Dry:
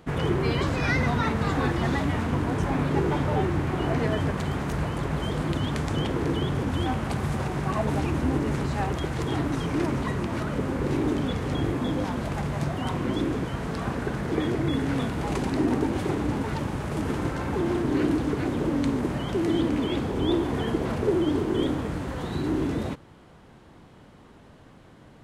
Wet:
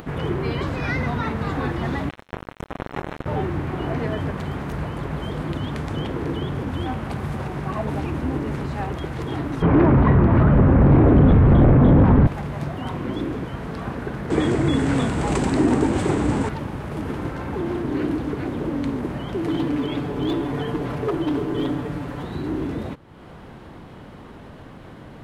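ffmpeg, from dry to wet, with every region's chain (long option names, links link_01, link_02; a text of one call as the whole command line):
ffmpeg -i in.wav -filter_complex "[0:a]asettb=1/sr,asplit=3[link_01][link_02][link_03];[link_01]atrim=end=2.094[link_04];[link_02]atrim=start=2.09:end=3.26,asetpts=PTS-STARTPTS,afade=type=in:duration=0.004:curve=qsin,afade=type=out:start_time=1.166:duration=0.004:curve=qsin,acrusher=bits=2:mix=0:aa=0.5,asuperstop=centerf=4700:order=8:qfactor=7.9[link_05];[link_03]atrim=start=3.256[link_06];[link_04][link_05]acrossfade=duration=0.004:curve1=hsin:curve2=qsin[link_07];[link_07][link_06]acrossfade=duration=0.004:curve1=qsin:curve2=hsin,asettb=1/sr,asplit=3[link_08][link_09][link_10];[link_08]atrim=end=9.624[link_11];[link_09]atrim=start=9.62:end=12.27,asetpts=PTS-STARTPTS,afade=type=in:duration=0.004:curve=qsin,afade=type=out:start_time=2.646:duration=0.004:curve=qsin,lowpass=1500,asubboost=boost=6:cutoff=200,aeval=exprs='0.355*sin(PI/2*2.82*val(0)/0.355)':channel_layout=same[link_12];[link_10]atrim=start=12.266[link_13];[link_11][link_12]acrossfade=duration=0.004:curve1=hsin:curve2=qsin[link_14];[link_14][link_13]acrossfade=duration=0.004:curve1=qsin:curve2=hsin,asettb=1/sr,asplit=3[link_15][link_16][link_17];[link_15]atrim=end=14.304[link_18];[link_16]atrim=start=14.3:end=16.49,asetpts=PTS-STARTPTS,afade=type=in:duration=0.004:curve=qsin,afade=type=out:start_time=2.186:duration=0.004:curve=qsin,lowpass=frequency=8000:width_type=q:width=5.4,acontrast=52[link_19];[link_17]atrim=start=16.486[link_20];[link_18][link_19]acrossfade=duration=0.004:curve1=hsin:curve2=qsin[link_21];[link_21][link_20]acrossfade=duration=0.004:curve1=qsin:curve2=hsin,asettb=1/sr,asplit=3[link_22][link_23][link_24];[link_22]atrim=end=19.434[link_25];[link_23]atrim=start=19.43:end=22.23,asetpts=PTS-STARTPTS,afade=type=in:duration=0.004:curve=qsin,afade=type=out:start_time=2.796:duration=0.004:curve=qsin,aecho=1:1:6.9:0.64,atrim=end_sample=123480,aeval=exprs='0.15*(abs(mod(val(0)/0.15+3,4)-2)-1)':channel_layout=same[link_26];[link_24]atrim=start=22.226[link_27];[link_25][link_26]acrossfade=duration=0.004:curve1=hsin:curve2=qsin[link_28];[link_28][link_27]acrossfade=duration=0.004:curve1=qsin:curve2=hsin,equalizer=frequency=7300:width=0.78:gain=-7.5,acompressor=mode=upward:threshold=-30dB:ratio=2.5" out.wav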